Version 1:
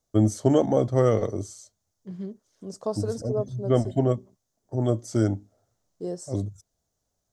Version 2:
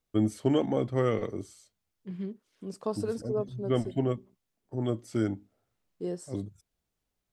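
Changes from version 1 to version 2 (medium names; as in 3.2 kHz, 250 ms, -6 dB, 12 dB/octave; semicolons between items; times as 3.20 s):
first voice -3.5 dB; master: add fifteen-band graphic EQ 100 Hz -7 dB, 630 Hz -7 dB, 2.5 kHz +10 dB, 6.3 kHz -11 dB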